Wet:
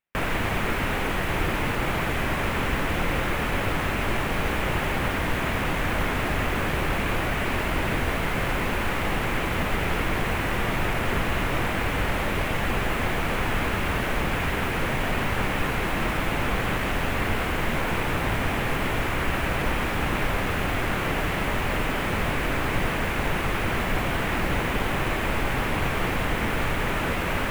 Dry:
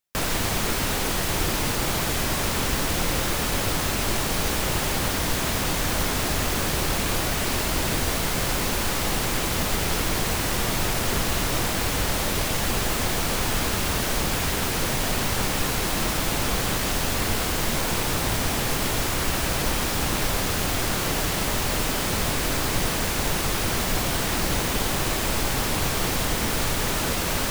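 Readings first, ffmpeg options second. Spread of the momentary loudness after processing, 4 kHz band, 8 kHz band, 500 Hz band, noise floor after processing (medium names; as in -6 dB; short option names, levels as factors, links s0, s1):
0 LU, -6.5 dB, -14.0 dB, 0.0 dB, -27 dBFS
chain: -af "highshelf=f=3400:t=q:w=1.5:g=-12.5"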